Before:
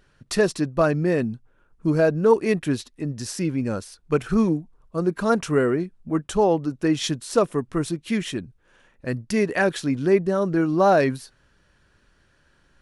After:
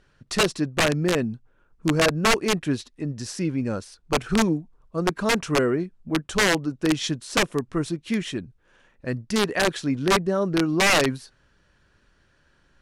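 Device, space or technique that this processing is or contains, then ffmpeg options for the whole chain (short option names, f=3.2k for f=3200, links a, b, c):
overflowing digital effects unit: -af "aeval=exprs='(mod(3.98*val(0)+1,2)-1)/3.98':c=same,lowpass=8.6k,volume=-1dB"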